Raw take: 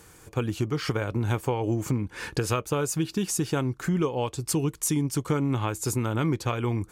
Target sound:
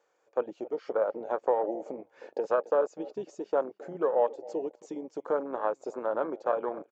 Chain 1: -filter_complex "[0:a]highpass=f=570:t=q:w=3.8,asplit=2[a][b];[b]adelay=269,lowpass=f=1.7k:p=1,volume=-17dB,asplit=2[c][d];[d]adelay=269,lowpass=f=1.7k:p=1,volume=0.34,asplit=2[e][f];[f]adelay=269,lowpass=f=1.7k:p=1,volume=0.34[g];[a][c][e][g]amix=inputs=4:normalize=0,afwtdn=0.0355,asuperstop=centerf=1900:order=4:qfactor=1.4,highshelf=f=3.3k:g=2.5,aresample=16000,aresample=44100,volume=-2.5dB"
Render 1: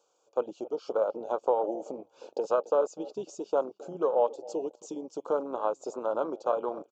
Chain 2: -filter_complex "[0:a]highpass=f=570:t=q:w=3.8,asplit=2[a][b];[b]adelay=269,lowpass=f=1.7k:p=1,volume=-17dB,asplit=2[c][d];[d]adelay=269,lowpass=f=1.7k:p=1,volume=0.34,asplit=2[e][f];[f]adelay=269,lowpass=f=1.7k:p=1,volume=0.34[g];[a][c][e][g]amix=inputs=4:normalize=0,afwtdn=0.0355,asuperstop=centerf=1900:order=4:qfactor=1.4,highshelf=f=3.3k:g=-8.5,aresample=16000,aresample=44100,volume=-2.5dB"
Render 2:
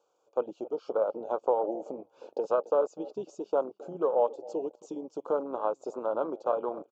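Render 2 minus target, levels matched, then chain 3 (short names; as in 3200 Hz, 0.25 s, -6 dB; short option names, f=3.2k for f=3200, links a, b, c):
2000 Hz band -8.0 dB
-filter_complex "[0:a]highpass=f=570:t=q:w=3.8,asplit=2[a][b];[b]adelay=269,lowpass=f=1.7k:p=1,volume=-17dB,asplit=2[c][d];[d]adelay=269,lowpass=f=1.7k:p=1,volume=0.34,asplit=2[e][f];[f]adelay=269,lowpass=f=1.7k:p=1,volume=0.34[g];[a][c][e][g]amix=inputs=4:normalize=0,afwtdn=0.0355,highshelf=f=3.3k:g=-8.5,aresample=16000,aresample=44100,volume=-2.5dB"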